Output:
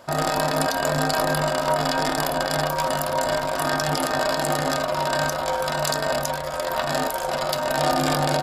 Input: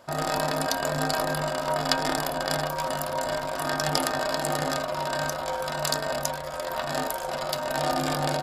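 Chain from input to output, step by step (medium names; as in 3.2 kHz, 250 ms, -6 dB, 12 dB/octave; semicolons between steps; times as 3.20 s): peak limiter -14 dBFS, peak gain reduction 11 dB; trim +5.5 dB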